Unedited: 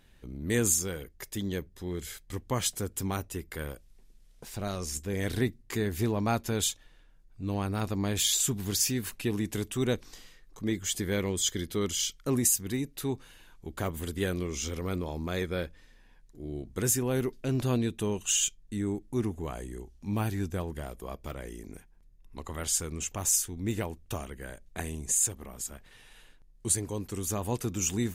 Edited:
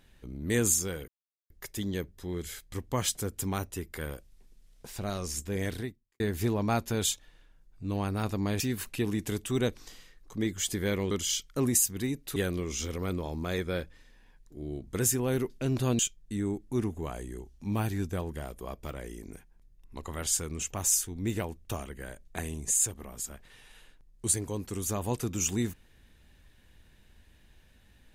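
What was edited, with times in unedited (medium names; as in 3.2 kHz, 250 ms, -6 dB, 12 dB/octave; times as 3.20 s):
1.08 s: insert silence 0.42 s
5.20–5.78 s: fade out quadratic
8.18–8.86 s: delete
11.37–11.81 s: delete
13.06–14.19 s: delete
17.82–18.40 s: delete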